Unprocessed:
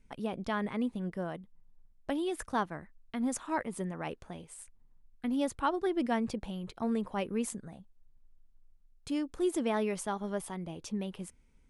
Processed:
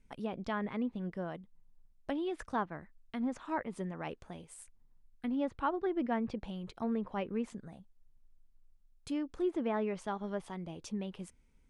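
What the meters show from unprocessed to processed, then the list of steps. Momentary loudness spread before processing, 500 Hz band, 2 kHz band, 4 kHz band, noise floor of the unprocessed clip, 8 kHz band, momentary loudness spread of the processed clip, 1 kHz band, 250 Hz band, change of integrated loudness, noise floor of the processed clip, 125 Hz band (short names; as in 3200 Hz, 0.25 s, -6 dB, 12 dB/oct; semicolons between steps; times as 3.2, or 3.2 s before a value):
15 LU, -2.5 dB, -3.5 dB, -6.0 dB, -63 dBFS, -12.0 dB, 15 LU, -2.5 dB, -2.5 dB, -2.5 dB, -66 dBFS, -2.5 dB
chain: treble ducked by the level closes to 2200 Hz, closed at -27.5 dBFS; gain -2.5 dB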